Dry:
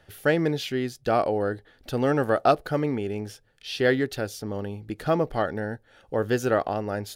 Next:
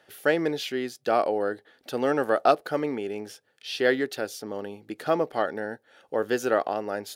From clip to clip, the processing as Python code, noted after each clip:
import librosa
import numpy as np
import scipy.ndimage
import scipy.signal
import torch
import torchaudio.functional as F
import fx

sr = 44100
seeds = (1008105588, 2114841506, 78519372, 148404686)

y = scipy.signal.sosfilt(scipy.signal.butter(2, 280.0, 'highpass', fs=sr, output='sos'), x)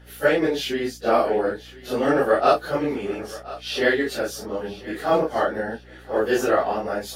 y = fx.phase_scramble(x, sr, seeds[0], window_ms=100)
y = fx.echo_thinned(y, sr, ms=1026, feedback_pct=30, hz=420.0, wet_db=-16.5)
y = fx.add_hum(y, sr, base_hz=60, snr_db=25)
y = F.gain(torch.from_numpy(y), 4.5).numpy()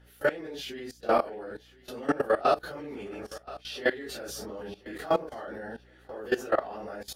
y = fx.level_steps(x, sr, step_db=18)
y = F.gain(torch.from_numpy(y), -3.0).numpy()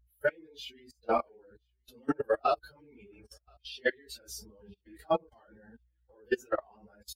y = fx.bin_expand(x, sr, power=2.0)